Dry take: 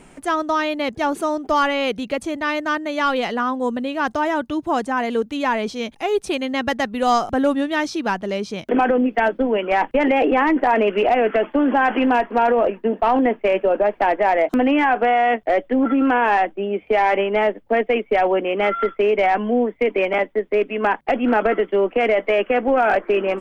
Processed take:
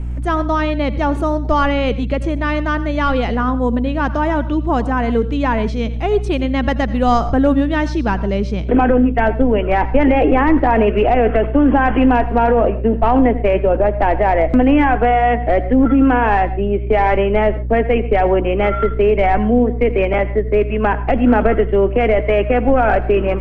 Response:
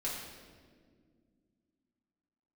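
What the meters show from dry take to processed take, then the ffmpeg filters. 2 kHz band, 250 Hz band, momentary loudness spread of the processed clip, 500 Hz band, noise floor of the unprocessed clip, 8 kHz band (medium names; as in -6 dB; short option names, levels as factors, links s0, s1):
+0.5 dB, +6.0 dB, 5 LU, +3.0 dB, -50 dBFS, no reading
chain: -filter_complex "[0:a]aeval=exprs='val(0)+0.0178*(sin(2*PI*60*n/s)+sin(2*PI*2*60*n/s)/2+sin(2*PI*3*60*n/s)/3+sin(2*PI*4*60*n/s)/4+sin(2*PI*5*60*n/s)/5)':c=same,aemphasis=mode=reproduction:type=bsi,asplit=2[s0][s1];[1:a]atrim=start_sample=2205,atrim=end_sample=3528,adelay=81[s2];[s1][s2]afir=irnorm=-1:irlink=0,volume=0.158[s3];[s0][s3]amix=inputs=2:normalize=0,volume=1.19"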